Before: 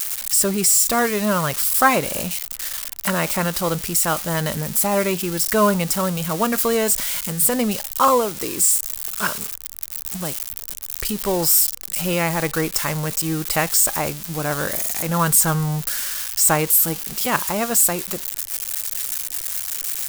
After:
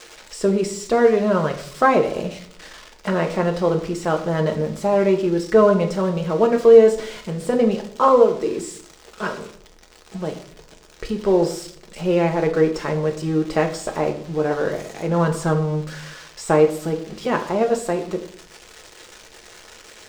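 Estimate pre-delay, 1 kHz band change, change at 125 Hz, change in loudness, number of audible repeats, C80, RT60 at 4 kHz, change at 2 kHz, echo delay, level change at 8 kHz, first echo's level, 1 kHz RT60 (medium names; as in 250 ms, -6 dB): 5 ms, -1.0 dB, +0.5 dB, -0.5 dB, no echo, 14.5 dB, 0.40 s, -4.0 dB, no echo, -19.0 dB, no echo, 0.55 s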